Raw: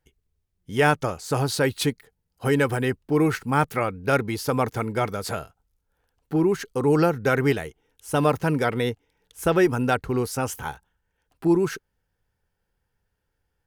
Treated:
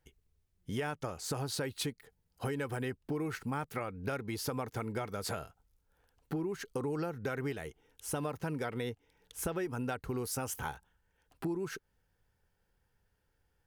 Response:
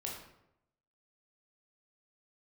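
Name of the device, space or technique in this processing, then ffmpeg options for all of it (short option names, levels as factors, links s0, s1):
serial compression, peaks first: -filter_complex "[0:a]asettb=1/sr,asplit=3[s0][s1][s2];[s0]atrim=end=10.014[s3];[s1]atrim=start=10.01:end=10.54,asetpts=PTS-STARTPTS,afade=t=in:d=0.004:c=qsin,afade=t=out:st=0.526:d=0.004:c=qsin,highshelf=f=7700:g=7[s4];[s2]atrim=start=10.536[s5];[s3][s4]acrossfade=d=0.004:c1=hsin:c2=qsin[s6];[s6][s5]acrossfade=d=0.004:c1=qsin:c2=hsin,acompressor=threshold=0.0355:ratio=5,acompressor=threshold=0.00891:ratio=1.5"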